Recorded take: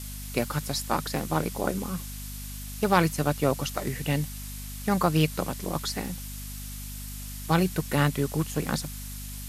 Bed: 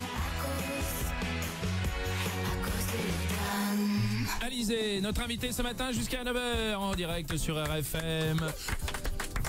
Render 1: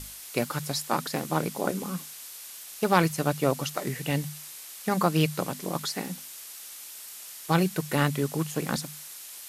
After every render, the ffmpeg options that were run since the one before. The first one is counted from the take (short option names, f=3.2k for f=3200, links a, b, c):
-af "bandreject=f=50:t=h:w=6,bandreject=f=100:t=h:w=6,bandreject=f=150:t=h:w=6,bandreject=f=200:t=h:w=6,bandreject=f=250:t=h:w=6"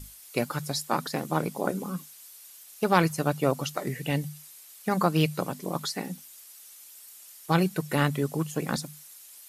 -af "afftdn=nr=10:nf=-43"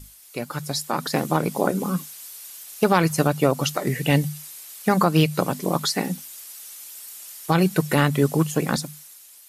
-af "alimiter=limit=-15.5dB:level=0:latency=1:release=175,dynaudnorm=f=200:g=9:m=9dB"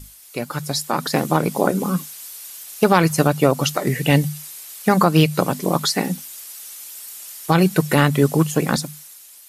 -af "volume=3.5dB"